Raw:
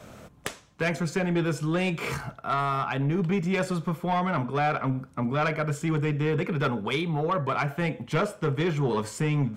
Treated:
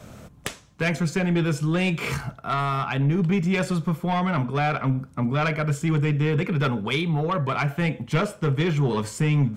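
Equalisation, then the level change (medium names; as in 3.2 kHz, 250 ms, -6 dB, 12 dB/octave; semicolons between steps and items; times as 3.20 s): dynamic bell 2.7 kHz, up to +4 dB, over -41 dBFS, Q 1; tone controls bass +6 dB, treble +3 dB; 0.0 dB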